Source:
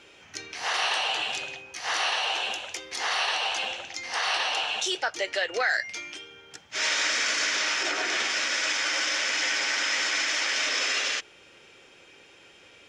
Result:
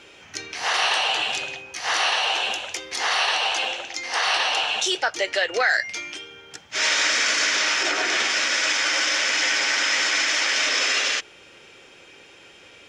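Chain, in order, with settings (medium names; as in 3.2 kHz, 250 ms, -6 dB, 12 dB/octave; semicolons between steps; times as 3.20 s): 3.52–4.24 s: resonant low shelf 240 Hz -6 dB, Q 1.5; trim +5 dB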